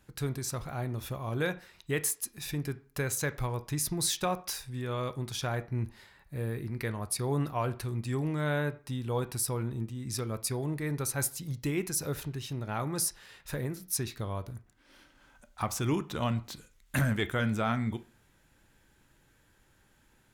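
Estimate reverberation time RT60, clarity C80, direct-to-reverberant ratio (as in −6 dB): 0.40 s, 22.5 dB, 11.0 dB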